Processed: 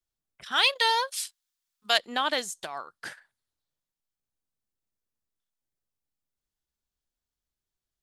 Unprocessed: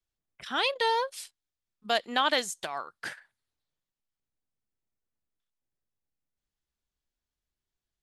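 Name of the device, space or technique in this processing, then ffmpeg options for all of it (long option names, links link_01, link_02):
exciter from parts: -filter_complex "[0:a]asplit=2[link_01][link_02];[link_02]highpass=frequency=2100:width=0.5412,highpass=frequency=2100:width=1.3066,asoftclip=type=tanh:threshold=-36.5dB,volume=-9.5dB[link_03];[link_01][link_03]amix=inputs=2:normalize=0,asplit=3[link_04][link_05][link_06];[link_04]afade=type=out:start_time=0.51:duration=0.02[link_07];[link_05]tiltshelf=frequency=630:gain=-9.5,afade=type=in:start_time=0.51:duration=0.02,afade=type=out:start_time=1.97:duration=0.02[link_08];[link_06]afade=type=in:start_time=1.97:duration=0.02[link_09];[link_07][link_08][link_09]amix=inputs=3:normalize=0,volume=-1.5dB"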